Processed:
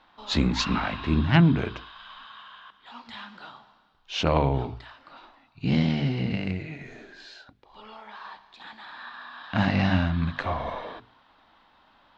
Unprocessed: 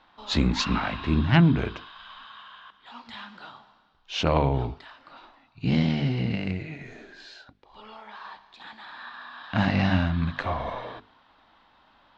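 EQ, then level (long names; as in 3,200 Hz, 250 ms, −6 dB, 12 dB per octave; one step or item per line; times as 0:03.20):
mains-hum notches 60/120 Hz
0.0 dB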